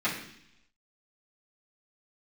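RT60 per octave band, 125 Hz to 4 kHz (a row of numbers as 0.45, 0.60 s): 0.90, 0.90, 0.70, 0.70, 0.90, 0.95 s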